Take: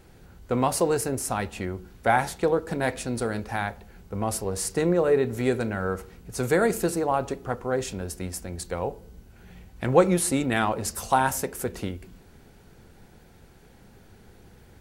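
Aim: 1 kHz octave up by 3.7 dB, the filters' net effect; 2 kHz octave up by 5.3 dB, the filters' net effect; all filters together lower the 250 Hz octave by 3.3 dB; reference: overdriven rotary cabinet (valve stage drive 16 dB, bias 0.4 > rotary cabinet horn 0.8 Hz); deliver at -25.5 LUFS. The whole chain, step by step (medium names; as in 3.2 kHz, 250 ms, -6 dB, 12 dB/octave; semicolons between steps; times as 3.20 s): peaking EQ 250 Hz -5 dB; peaking EQ 1 kHz +4 dB; peaking EQ 2 kHz +5.5 dB; valve stage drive 16 dB, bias 0.4; rotary cabinet horn 0.8 Hz; trim +5 dB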